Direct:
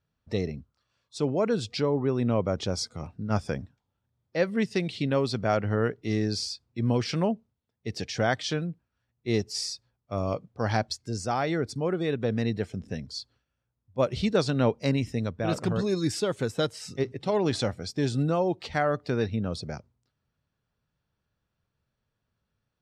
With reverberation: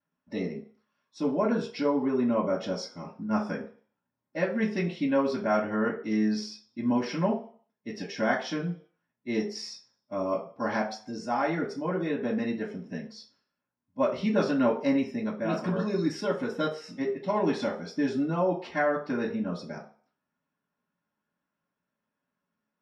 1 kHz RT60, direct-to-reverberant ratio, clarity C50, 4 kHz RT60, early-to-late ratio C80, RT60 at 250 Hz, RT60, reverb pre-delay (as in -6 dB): 0.50 s, -14.5 dB, 9.0 dB, 0.45 s, 13.5 dB, 0.40 s, 0.45 s, 3 ms